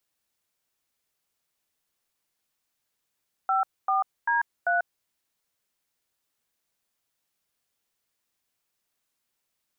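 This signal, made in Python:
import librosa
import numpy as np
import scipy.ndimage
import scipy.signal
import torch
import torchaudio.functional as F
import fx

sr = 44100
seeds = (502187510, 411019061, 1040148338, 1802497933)

y = fx.dtmf(sr, digits='54D3', tone_ms=142, gap_ms=250, level_db=-23.5)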